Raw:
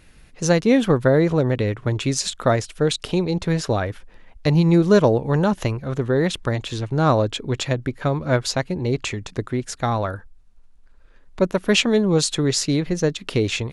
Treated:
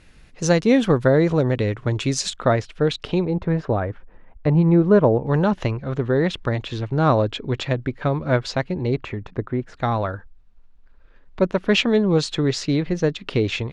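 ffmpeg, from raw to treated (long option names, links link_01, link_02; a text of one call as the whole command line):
ffmpeg -i in.wav -af "asetnsamples=nb_out_samples=441:pad=0,asendcmd='2.36 lowpass f 3600;3.25 lowpass f 1500;5.27 lowpass f 3900;8.96 lowpass f 1700;9.74 lowpass f 4000',lowpass=8100" out.wav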